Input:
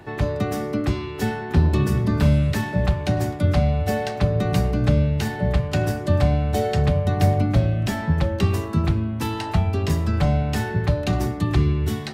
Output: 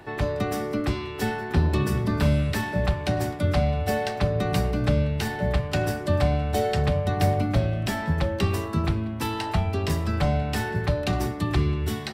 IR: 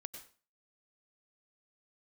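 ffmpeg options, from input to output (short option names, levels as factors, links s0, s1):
-filter_complex "[0:a]equalizer=f=120:t=o:w=2.8:g=-5,bandreject=f=6600:w=14,asplit=2[s0][s1];[s1]aecho=0:1:188:0.0794[s2];[s0][s2]amix=inputs=2:normalize=0"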